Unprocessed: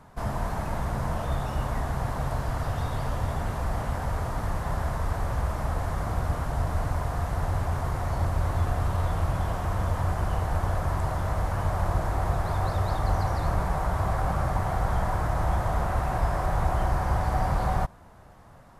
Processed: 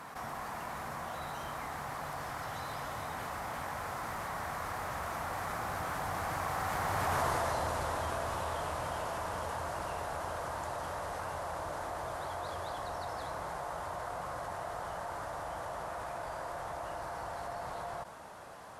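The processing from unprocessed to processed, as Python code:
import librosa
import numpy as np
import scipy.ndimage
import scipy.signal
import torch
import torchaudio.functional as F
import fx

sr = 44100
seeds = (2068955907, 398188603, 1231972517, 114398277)

y = fx.doppler_pass(x, sr, speed_mps=27, closest_m=3.8, pass_at_s=7.21)
y = fx.highpass(y, sr, hz=720.0, slope=6)
y = fx.env_flatten(y, sr, amount_pct=70)
y = F.gain(torch.from_numpy(y), 5.5).numpy()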